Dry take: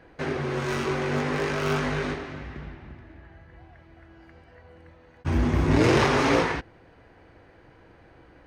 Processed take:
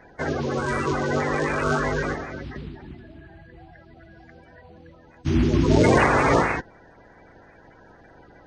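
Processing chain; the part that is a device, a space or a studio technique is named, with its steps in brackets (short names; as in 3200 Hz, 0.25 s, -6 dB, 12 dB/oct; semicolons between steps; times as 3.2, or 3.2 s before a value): clip after many re-uploads (LPF 8900 Hz 24 dB/oct; bin magnitudes rounded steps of 30 dB); gain +3.5 dB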